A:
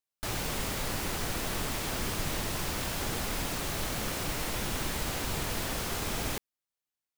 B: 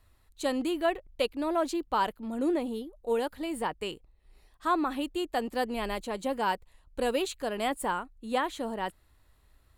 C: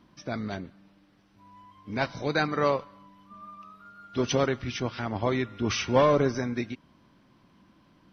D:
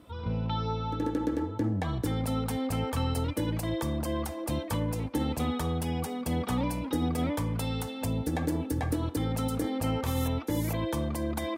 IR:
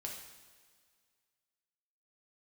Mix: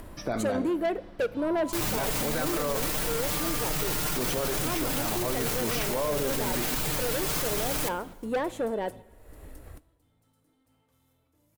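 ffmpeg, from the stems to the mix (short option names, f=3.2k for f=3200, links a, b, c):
-filter_complex "[0:a]highshelf=f=9.6k:g=8.5,aecho=1:1:6.6:1,adelay=1500,volume=2dB,asplit=2[a][b];[b]volume=-15dB[c];[1:a]equalizer=f=500:t=o:w=1:g=10,equalizer=f=1k:t=o:w=1:g=-5,equalizer=f=4k:t=o:w=1:g=-11,acompressor=mode=upward:threshold=-34dB:ratio=2.5,asoftclip=type=tanh:threshold=-25.5dB,volume=1dB,asplit=3[d][e][f];[e]volume=-11dB[g];[2:a]equalizer=f=610:t=o:w=2.5:g=8,acompressor=threshold=-43dB:ratio=1.5,volume=2.5dB,asplit=2[h][i];[i]volume=-4dB[j];[3:a]highshelf=f=4.6k:g=8,asoftclip=type=tanh:threshold=-29.5dB,adelay=850,volume=-17.5dB,asplit=2[k][l];[l]volume=-17.5dB[m];[f]apad=whole_len=547824[n];[k][n]sidechaingate=range=-33dB:threshold=-46dB:ratio=16:detection=peak[o];[4:a]atrim=start_sample=2205[p];[c][g][j][m]amix=inputs=4:normalize=0[q];[q][p]afir=irnorm=-1:irlink=0[r];[a][d][h][o][r]amix=inputs=5:normalize=0,alimiter=limit=-19.5dB:level=0:latency=1:release=12"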